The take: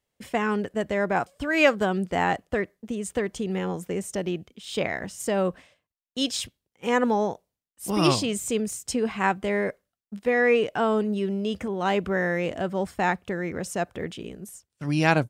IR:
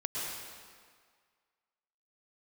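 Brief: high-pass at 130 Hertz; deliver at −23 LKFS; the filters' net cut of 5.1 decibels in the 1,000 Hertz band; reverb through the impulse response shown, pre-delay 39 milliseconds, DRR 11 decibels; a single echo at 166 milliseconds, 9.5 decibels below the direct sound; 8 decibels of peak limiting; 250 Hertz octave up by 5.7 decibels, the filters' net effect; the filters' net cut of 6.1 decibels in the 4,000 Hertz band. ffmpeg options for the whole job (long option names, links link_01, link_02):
-filter_complex "[0:a]highpass=130,equalizer=frequency=250:width_type=o:gain=8.5,equalizer=frequency=1000:width_type=o:gain=-7.5,equalizer=frequency=4000:width_type=o:gain=-8.5,alimiter=limit=-14dB:level=0:latency=1,aecho=1:1:166:0.335,asplit=2[link_01][link_02];[1:a]atrim=start_sample=2205,adelay=39[link_03];[link_02][link_03]afir=irnorm=-1:irlink=0,volume=-15.5dB[link_04];[link_01][link_04]amix=inputs=2:normalize=0,volume=2dB"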